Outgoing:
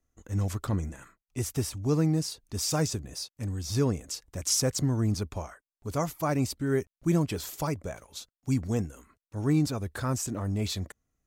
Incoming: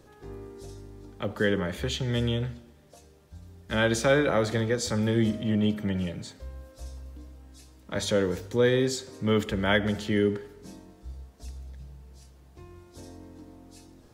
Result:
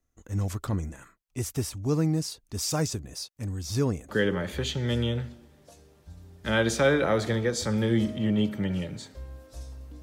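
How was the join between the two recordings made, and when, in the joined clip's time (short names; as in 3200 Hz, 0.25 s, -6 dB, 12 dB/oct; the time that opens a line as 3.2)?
outgoing
4.09 switch to incoming from 1.34 s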